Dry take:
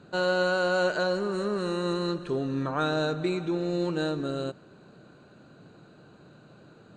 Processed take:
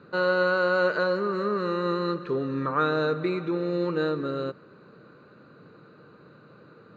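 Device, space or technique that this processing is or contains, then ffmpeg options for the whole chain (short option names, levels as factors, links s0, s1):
guitar cabinet: -af "highpass=93,equalizer=f=480:t=q:w=4:g=7,equalizer=f=710:t=q:w=4:g=-8,equalizer=f=1200:t=q:w=4:g=9,equalizer=f=2000:t=q:w=4:g=5,equalizer=f=3200:t=q:w=4:g=-7,lowpass=f=4600:w=0.5412,lowpass=f=4600:w=1.3066"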